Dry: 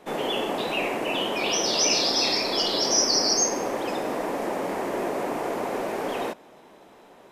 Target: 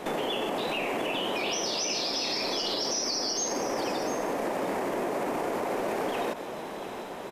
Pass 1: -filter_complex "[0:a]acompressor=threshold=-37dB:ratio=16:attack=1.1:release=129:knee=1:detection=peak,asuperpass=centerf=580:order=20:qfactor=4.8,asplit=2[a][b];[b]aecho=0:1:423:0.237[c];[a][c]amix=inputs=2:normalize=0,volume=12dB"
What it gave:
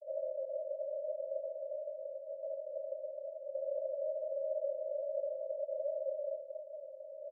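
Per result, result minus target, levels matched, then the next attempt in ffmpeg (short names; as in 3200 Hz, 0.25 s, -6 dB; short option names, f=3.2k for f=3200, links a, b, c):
echo 0.277 s early; 500 Hz band +5.5 dB
-filter_complex "[0:a]acompressor=threshold=-37dB:ratio=16:attack=1.1:release=129:knee=1:detection=peak,asuperpass=centerf=580:order=20:qfactor=4.8,asplit=2[a][b];[b]aecho=0:1:700:0.237[c];[a][c]amix=inputs=2:normalize=0,volume=12dB"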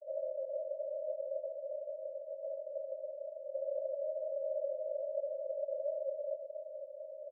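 500 Hz band +5.5 dB
-filter_complex "[0:a]acompressor=threshold=-37dB:ratio=16:attack=1.1:release=129:knee=1:detection=peak,asplit=2[a][b];[b]aecho=0:1:700:0.237[c];[a][c]amix=inputs=2:normalize=0,volume=12dB"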